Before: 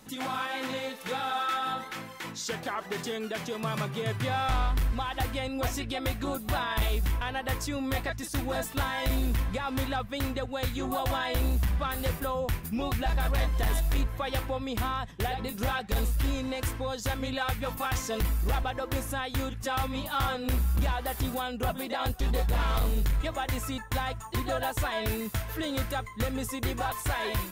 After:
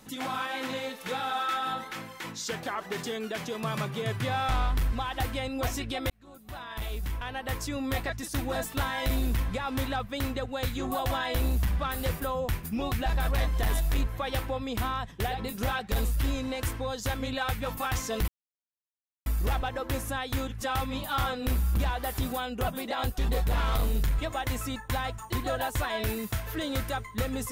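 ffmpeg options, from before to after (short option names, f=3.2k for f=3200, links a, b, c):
-filter_complex "[0:a]asplit=3[a][b][c];[a]atrim=end=6.1,asetpts=PTS-STARTPTS,afade=t=out:st=6.096:d=0.004:c=hsin[d];[b]atrim=start=6.1:end=18.28,asetpts=PTS-STARTPTS,afade=t=in:d=1.75,afade=t=out:st=12.176:d=0.004:c=hsin,apad=pad_dur=0.98[e];[c]atrim=start=18.28,asetpts=PTS-STARTPTS,afade=t=in:d=0.004:c=hsin[f];[d][e][f]concat=n=3:v=0:a=1"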